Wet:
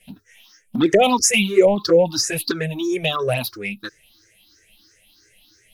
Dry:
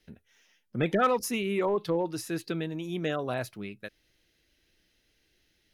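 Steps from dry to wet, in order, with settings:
rippled gain that drifts along the octave scale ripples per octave 0.5, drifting +3 Hz, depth 23 dB
flanger swept by the level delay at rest 9.8 ms, full sweep at −17 dBFS
parametric band 13,000 Hz +10 dB 2.6 octaves
level +7.5 dB

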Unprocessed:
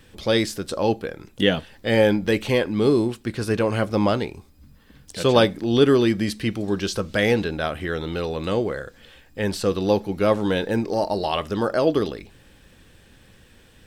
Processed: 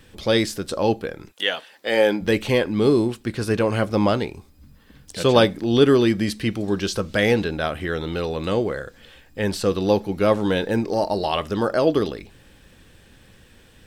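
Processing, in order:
0:01.31–0:02.20: high-pass filter 1,000 Hz → 260 Hz 12 dB per octave
level +1 dB

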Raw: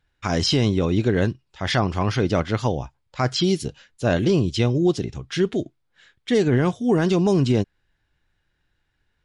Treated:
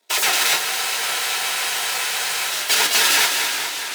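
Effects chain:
each half-wave held at its own peak
gate on every frequency bin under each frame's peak −15 dB weak
high-pass filter 170 Hz 12 dB per octave
notch filter 490 Hz, Q 12
in parallel at +1.5 dB: brickwall limiter −17 dBFS, peak gain reduction 10 dB
on the sum: feedback delay with all-pass diffusion 546 ms, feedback 52%, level −5 dB
on a send at −1.5 dB: convolution reverb RT60 0.50 s, pre-delay 5 ms
on the sum: wrong playback speed 33 rpm record played at 78 rpm
frozen spectrum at 0:00.66, 1.84 s
feedback echo with a swinging delay time 408 ms, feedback 79%, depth 116 cents, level −13 dB

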